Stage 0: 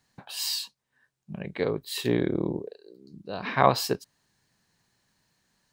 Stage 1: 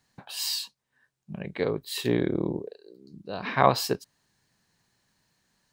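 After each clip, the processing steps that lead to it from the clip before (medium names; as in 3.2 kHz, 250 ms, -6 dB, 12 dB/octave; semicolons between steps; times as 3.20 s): no audible change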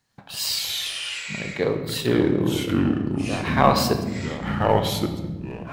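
waveshaping leveller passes 1; ever faster or slower copies 106 ms, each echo -4 st, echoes 3; on a send at -6 dB: reverberation RT60 1.2 s, pre-delay 9 ms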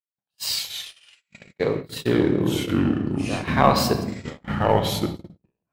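gate -26 dBFS, range -49 dB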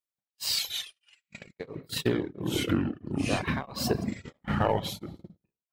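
reverb removal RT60 0.61 s; compression 10:1, threshold -22 dBFS, peak gain reduction 11.5 dB; tremolo of two beating tones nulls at 1.5 Hz; trim +1.5 dB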